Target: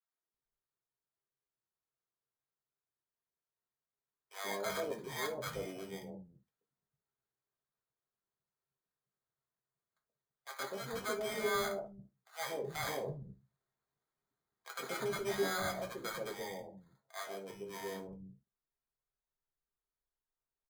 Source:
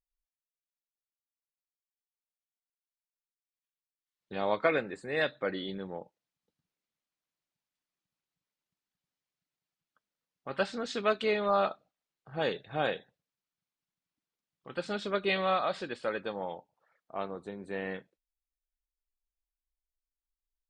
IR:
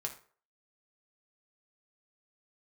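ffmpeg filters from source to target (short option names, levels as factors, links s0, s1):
-filter_complex "[0:a]asettb=1/sr,asplit=3[s0][s1][s2];[s0]atrim=end=12.754[s3];[s1]atrim=start=12.75:end=15.04,asetpts=PTS-STARTPTS,afade=t=in:d=0.004:c=qsin,afade=t=out:st=2.286:d=0.004:c=qsin,acontrast=70[s4];[s2]atrim=start=15.036[s5];[s3][s4]acrossfade=d=0.004:c1=hsin:c2=qsin[s6];[s6][s5]acrossfade=d=0.004:c1=qsin:c2=hsin,alimiter=limit=0.0944:level=0:latency=1:release=29,acrusher=samples=16:mix=1:aa=0.000001,acrossover=split=200|710[s7][s8][s9];[s8]adelay=130[s10];[s7]adelay=340[s11];[s11][s10][s9]amix=inputs=3:normalize=0[s12];[1:a]atrim=start_sample=2205,atrim=end_sample=3528[s13];[s12][s13]afir=irnorm=-1:irlink=0,volume=0.596"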